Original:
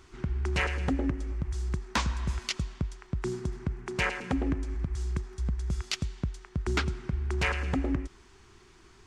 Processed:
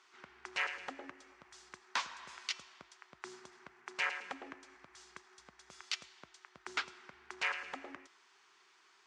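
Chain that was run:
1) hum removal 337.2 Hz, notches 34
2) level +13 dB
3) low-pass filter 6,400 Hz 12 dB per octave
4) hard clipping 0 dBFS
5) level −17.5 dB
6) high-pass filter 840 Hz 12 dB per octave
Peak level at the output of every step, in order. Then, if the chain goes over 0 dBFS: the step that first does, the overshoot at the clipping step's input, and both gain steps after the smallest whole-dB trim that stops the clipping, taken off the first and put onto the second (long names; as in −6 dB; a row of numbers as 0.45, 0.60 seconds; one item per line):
−14.5, −1.5, −1.5, −1.5, −19.0, −20.0 dBFS
no step passes full scale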